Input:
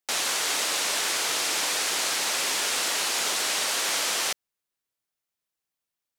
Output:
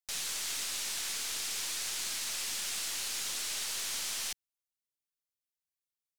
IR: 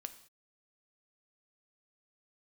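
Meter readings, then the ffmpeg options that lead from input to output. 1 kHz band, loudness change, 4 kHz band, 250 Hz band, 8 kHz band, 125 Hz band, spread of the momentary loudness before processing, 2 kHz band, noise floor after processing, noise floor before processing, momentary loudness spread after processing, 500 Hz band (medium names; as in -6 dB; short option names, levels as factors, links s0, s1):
-17.5 dB, -9.5 dB, -10.0 dB, -14.5 dB, -8.0 dB, no reading, 1 LU, -13.0 dB, under -85 dBFS, under -85 dBFS, 1 LU, -19.0 dB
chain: -af "equalizer=f=560:w=0.37:g=-15,aeval=exprs='(tanh(14.1*val(0)+0.6)-tanh(0.6))/14.1':c=same,volume=0.631"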